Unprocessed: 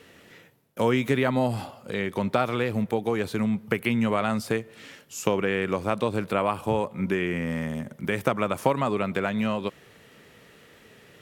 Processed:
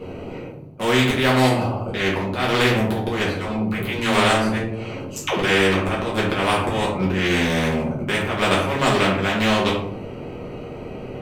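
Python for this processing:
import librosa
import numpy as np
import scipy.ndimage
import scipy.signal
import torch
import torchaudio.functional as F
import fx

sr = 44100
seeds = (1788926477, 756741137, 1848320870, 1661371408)

y = fx.wiener(x, sr, points=25)
y = fx.auto_swell(y, sr, attack_ms=229.0)
y = fx.dispersion(y, sr, late='lows', ms=124.0, hz=360.0, at=(3.31, 5.77))
y = fx.room_shoebox(y, sr, seeds[0], volume_m3=44.0, walls='mixed', distance_m=1.3)
y = fx.spectral_comp(y, sr, ratio=2.0)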